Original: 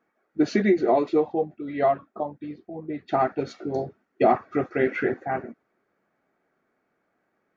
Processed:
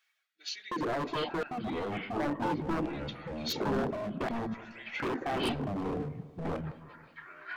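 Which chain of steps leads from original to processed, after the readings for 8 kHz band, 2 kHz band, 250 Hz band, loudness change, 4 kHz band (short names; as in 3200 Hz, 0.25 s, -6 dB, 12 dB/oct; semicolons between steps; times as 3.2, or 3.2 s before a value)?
n/a, -5.0 dB, -7.0 dB, -9.5 dB, +7.0 dB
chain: reverse; compressor 8:1, threshold -31 dBFS, peak gain reduction 17 dB; reverse; limiter -32 dBFS, peak gain reduction 10.5 dB; LFO high-pass square 0.7 Hz 240–3300 Hz; wavefolder -35.5 dBFS; echoes that change speed 0.501 s, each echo -6 st, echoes 2; on a send: dark delay 0.182 s, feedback 47%, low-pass 1100 Hz, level -15.5 dB; on the sum: gain +8.5 dB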